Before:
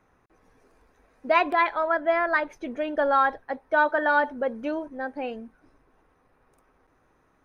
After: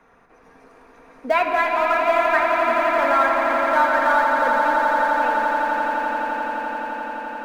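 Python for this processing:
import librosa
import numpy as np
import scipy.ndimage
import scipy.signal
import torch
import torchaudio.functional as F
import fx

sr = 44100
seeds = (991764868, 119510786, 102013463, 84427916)

p1 = fx.low_shelf(x, sr, hz=350.0, db=-9.5)
p2 = np.where(np.abs(p1) >= 10.0 ** (-24.0 / 20.0), p1, 0.0)
p3 = p1 + (p2 * librosa.db_to_amplitude(-8.0))
p4 = fx.high_shelf(p3, sr, hz=4000.0, db=-10.0)
p5 = fx.echo_swell(p4, sr, ms=86, loudest=8, wet_db=-9)
p6 = fx.room_shoebox(p5, sr, seeds[0], volume_m3=3300.0, walls='mixed', distance_m=1.7)
y = fx.band_squash(p6, sr, depth_pct=40)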